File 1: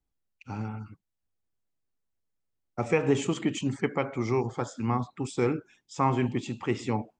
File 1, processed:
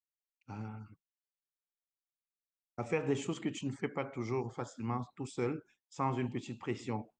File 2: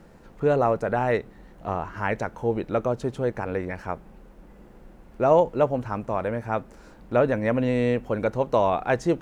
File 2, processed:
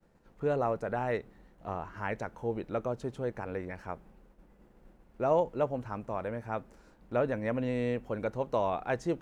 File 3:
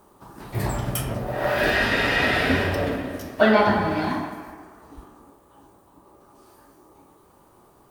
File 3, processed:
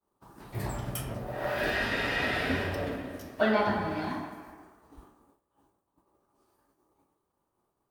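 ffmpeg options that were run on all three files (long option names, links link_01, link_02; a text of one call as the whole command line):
ffmpeg -i in.wav -af "agate=range=-33dB:threshold=-44dB:ratio=3:detection=peak,volume=-8.5dB" out.wav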